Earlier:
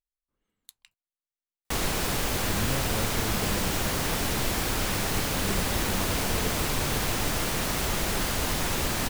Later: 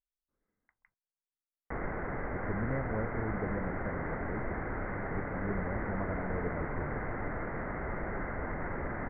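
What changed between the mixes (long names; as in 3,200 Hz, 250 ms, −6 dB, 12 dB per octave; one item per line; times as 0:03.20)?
background −5.0 dB
master: add Chebyshev low-pass with heavy ripple 2,100 Hz, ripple 3 dB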